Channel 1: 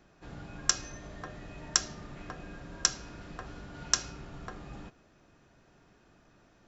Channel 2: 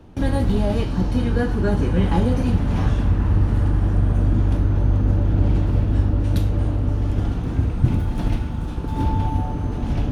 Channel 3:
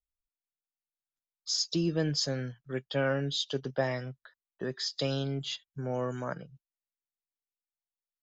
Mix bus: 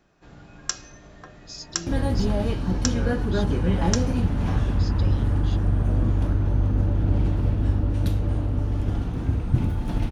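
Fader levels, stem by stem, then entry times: -1.5 dB, -3.5 dB, -9.0 dB; 0.00 s, 1.70 s, 0.00 s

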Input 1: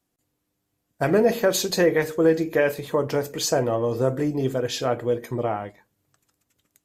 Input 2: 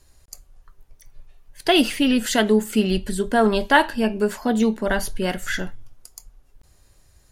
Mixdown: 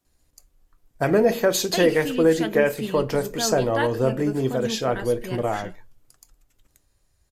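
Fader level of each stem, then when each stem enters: +0.5 dB, -11.0 dB; 0.00 s, 0.05 s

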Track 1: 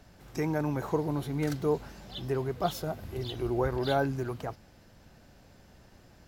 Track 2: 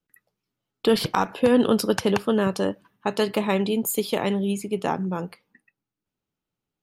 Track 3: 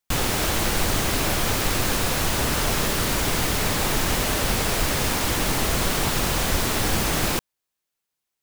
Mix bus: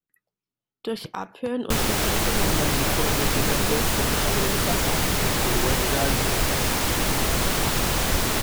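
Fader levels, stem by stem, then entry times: -1.0 dB, -9.5 dB, 0.0 dB; 2.05 s, 0.00 s, 1.60 s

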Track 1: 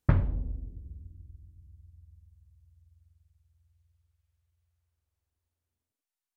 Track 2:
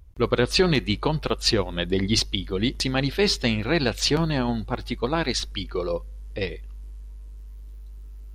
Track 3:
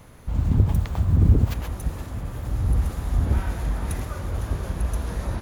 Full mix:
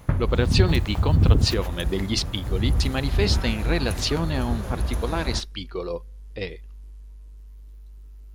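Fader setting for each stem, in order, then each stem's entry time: 0.0 dB, -3.0 dB, -0.5 dB; 0.00 s, 0.00 s, 0.00 s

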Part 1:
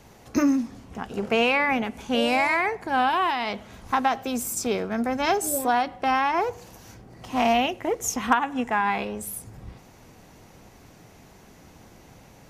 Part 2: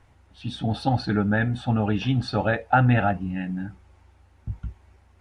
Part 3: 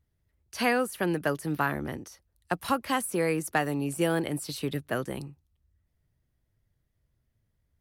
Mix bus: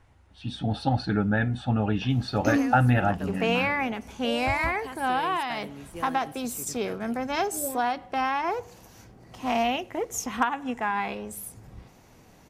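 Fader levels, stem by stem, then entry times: -4.0 dB, -2.0 dB, -13.0 dB; 2.10 s, 0.00 s, 1.95 s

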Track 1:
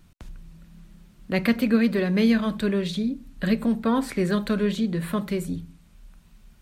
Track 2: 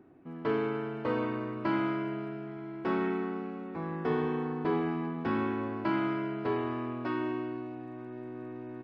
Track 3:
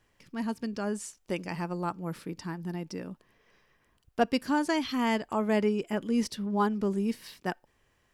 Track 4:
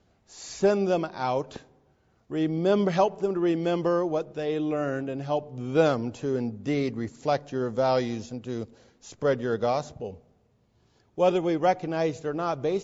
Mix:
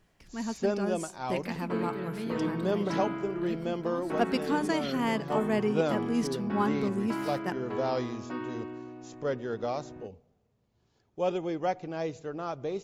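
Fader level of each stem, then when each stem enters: -17.5 dB, -4.5 dB, -2.0 dB, -7.0 dB; 0.00 s, 1.25 s, 0.00 s, 0.00 s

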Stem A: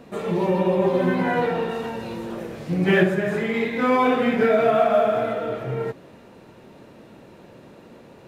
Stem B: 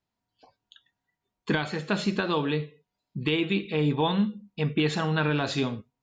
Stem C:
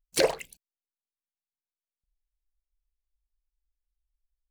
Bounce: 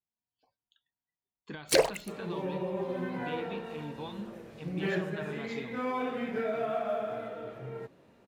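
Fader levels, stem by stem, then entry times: -14.0 dB, -17.0 dB, 0.0 dB; 1.95 s, 0.00 s, 1.55 s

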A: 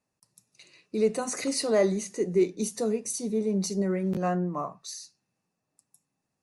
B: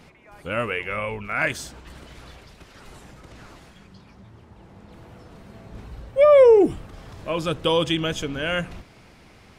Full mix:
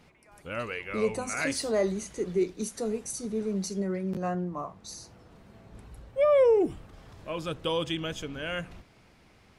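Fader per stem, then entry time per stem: -3.5 dB, -8.5 dB; 0.00 s, 0.00 s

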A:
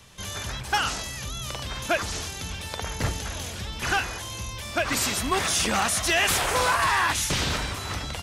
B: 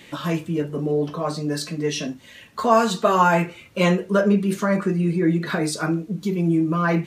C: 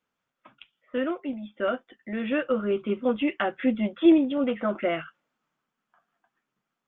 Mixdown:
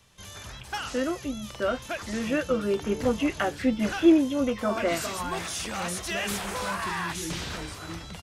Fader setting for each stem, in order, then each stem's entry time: -9.0 dB, -18.0 dB, -0.5 dB; 0.00 s, 2.00 s, 0.00 s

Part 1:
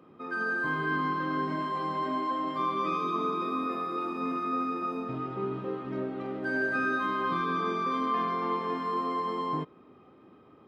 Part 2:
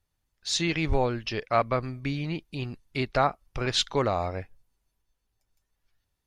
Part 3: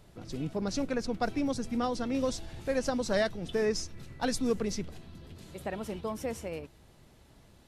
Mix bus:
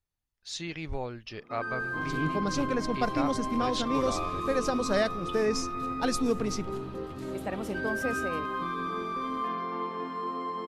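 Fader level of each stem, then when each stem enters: -3.5 dB, -10.0 dB, +1.5 dB; 1.30 s, 0.00 s, 1.80 s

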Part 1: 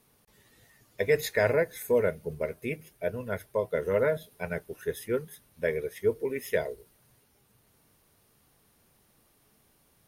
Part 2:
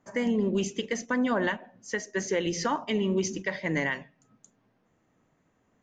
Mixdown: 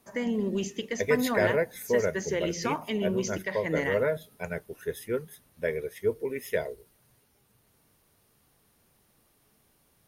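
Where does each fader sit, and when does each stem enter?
-1.0 dB, -2.5 dB; 0.00 s, 0.00 s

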